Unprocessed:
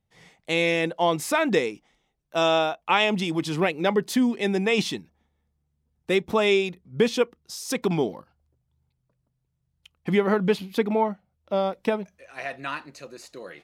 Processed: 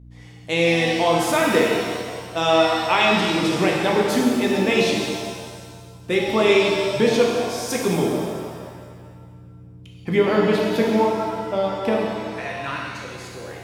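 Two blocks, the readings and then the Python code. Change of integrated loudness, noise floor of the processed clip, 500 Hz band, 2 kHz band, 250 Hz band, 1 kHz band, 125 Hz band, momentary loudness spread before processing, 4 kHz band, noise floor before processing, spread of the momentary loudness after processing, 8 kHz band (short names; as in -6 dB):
+4.5 dB, -43 dBFS, +5.0 dB, +4.5 dB, +4.5 dB, +5.0 dB, +4.5 dB, 14 LU, +5.0 dB, -76 dBFS, 15 LU, +6.0 dB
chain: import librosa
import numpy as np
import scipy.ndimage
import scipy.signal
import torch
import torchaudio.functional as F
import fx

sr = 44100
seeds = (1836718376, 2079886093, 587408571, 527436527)

y = fx.add_hum(x, sr, base_hz=60, snr_db=20)
y = fx.rev_shimmer(y, sr, seeds[0], rt60_s=1.8, semitones=7, shimmer_db=-8, drr_db=-2.0)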